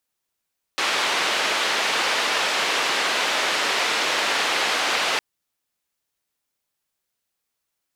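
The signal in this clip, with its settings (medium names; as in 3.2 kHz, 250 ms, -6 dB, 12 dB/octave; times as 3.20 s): noise band 420–3300 Hz, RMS -22.5 dBFS 4.41 s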